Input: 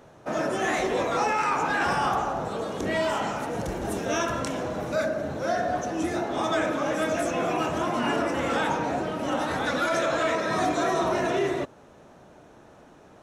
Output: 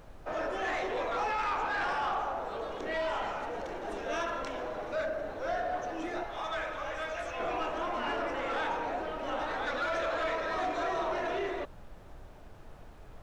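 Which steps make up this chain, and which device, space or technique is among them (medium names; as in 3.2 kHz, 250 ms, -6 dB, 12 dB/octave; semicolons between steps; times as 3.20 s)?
6.23–7.40 s: high-pass 1 kHz 6 dB/octave; aircraft cabin announcement (band-pass 420–3700 Hz; saturation -21.5 dBFS, distortion -18 dB; brown noise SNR 14 dB); trim -4 dB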